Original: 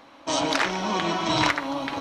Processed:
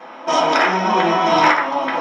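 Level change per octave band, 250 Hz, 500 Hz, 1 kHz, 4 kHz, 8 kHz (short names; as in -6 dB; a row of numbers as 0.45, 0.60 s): +5.0, +10.0, +11.0, +2.5, -0.5 dB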